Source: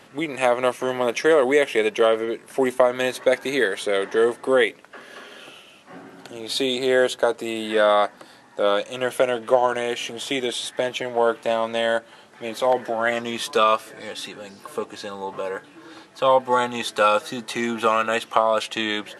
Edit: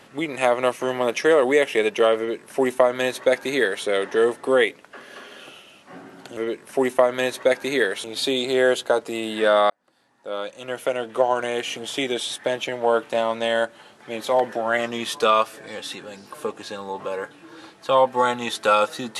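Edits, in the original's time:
2.18–3.85 copy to 6.37
8.03–9.95 fade in

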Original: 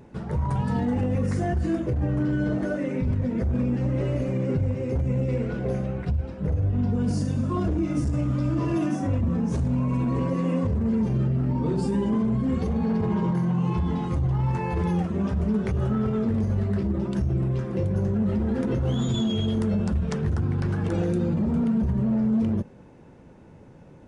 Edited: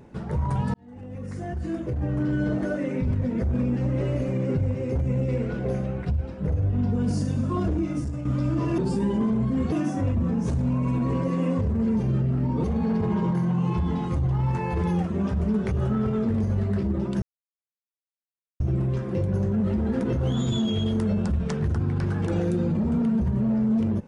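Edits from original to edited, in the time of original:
0.74–2.37 fade in
7.75–8.25 fade out, to -8.5 dB
11.7–12.64 move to 8.78
17.22 insert silence 1.38 s

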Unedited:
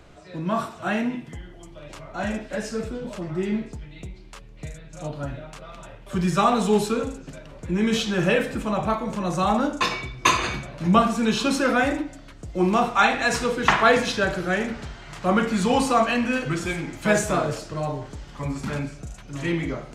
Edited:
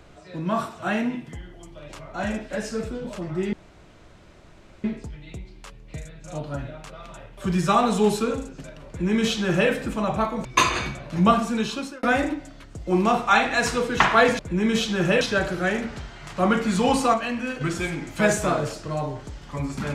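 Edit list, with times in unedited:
3.53 insert room tone 1.31 s
7.57–8.39 copy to 14.07
9.14–10.13 cut
10.82–11.71 fade out equal-power
16–16.47 gain -5 dB

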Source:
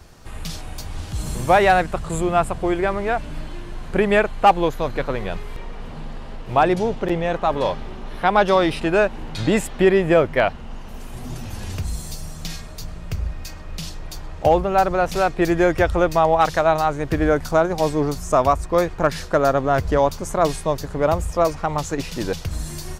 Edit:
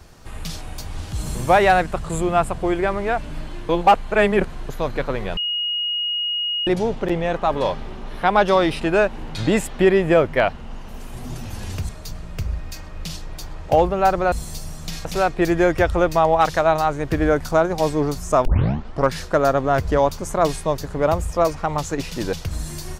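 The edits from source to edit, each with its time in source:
3.69–4.69 reverse
5.37–6.67 bleep 2880 Hz -20.5 dBFS
11.89–12.62 move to 15.05
18.45 tape start 0.68 s

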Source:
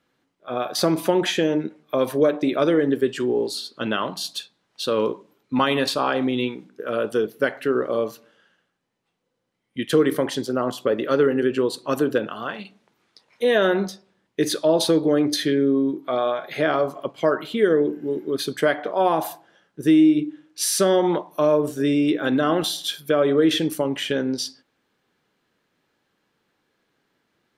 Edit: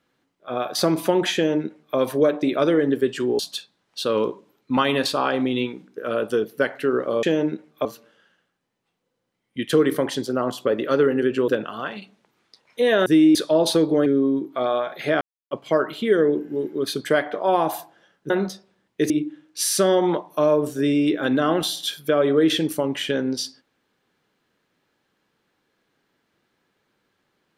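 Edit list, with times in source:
1.35–1.97 copy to 8.05
3.39–4.21 cut
11.68–12.11 cut
13.69–14.49 swap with 19.82–20.11
15.2–15.58 cut
16.73–17.03 mute

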